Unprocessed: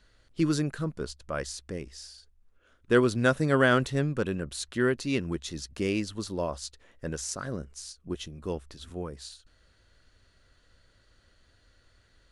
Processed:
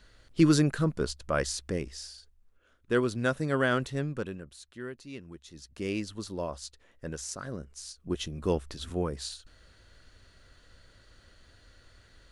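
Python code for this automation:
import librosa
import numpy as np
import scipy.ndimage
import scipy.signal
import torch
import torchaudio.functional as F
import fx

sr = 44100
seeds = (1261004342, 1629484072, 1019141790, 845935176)

y = fx.gain(x, sr, db=fx.line((1.75, 4.5), (2.92, -4.5), (4.17, -4.5), (4.6, -14.5), (5.41, -14.5), (5.92, -3.5), (7.65, -3.5), (8.38, 5.5)))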